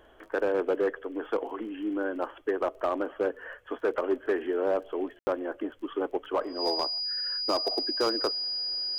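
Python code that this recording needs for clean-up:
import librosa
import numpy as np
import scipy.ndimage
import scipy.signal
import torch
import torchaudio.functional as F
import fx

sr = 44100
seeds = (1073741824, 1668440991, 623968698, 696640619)

y = fx.fix_declip(x, sr, threshold_db=-19.5)
y = fx.fix_declick_ar(y, sr, threshold=6.5)
y = fx.notch(y, sr, hz=4900.0, q=30.0)
y = fx.fix_ambience(y, sr, seeds[0], print_start_s=3.33, print_end_s=3.83, start_s=5.19, end_s=5.27)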